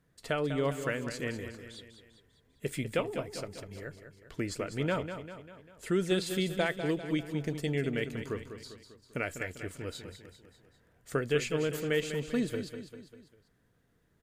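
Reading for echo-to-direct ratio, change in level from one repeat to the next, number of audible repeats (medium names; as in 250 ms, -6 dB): -8.0 dB, -5.5 dB, 4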